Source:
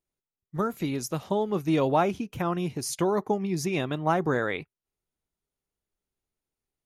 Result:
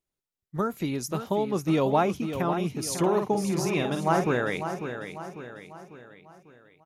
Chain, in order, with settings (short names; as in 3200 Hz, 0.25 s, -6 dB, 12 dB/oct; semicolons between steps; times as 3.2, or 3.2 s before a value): 2.81–4.24 doubler 50 ms -5.5 dB; on a send: feedback echo 0.547 s, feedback 47%, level -9 dB